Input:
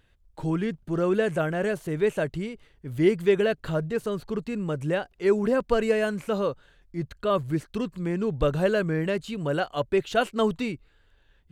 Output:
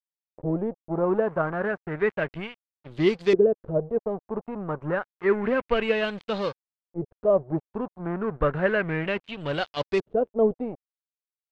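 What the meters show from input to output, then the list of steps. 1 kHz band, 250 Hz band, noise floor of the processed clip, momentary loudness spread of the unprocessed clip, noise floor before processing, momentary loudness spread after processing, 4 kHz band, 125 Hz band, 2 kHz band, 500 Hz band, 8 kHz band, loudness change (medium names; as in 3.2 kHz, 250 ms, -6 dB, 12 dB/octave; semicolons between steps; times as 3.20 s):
0.0 dB, -1.5 dB, under -85 dBFS, 9 LU, -62 dBFS, 11 LU, 0.0 dB, -3.0 dB, +1.5 dB, +0.5 dB, no reading, 0.0 dB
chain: crossover distortion -35.5 dBFS; LFO low-pass saw up 0.3 Hz 390–5200 Hz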